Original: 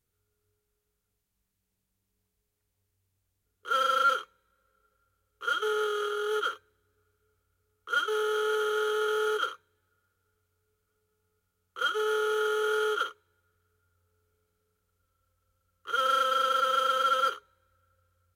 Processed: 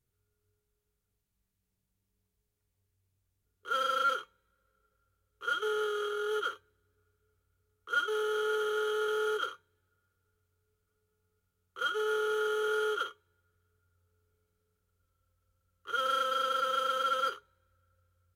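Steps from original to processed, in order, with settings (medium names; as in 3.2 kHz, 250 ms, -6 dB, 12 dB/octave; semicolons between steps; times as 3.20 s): bass shelf 340 Hz +5.5 dB; feedback comb 130 Hz, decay 0.15 s, harmonics odd, mix 50%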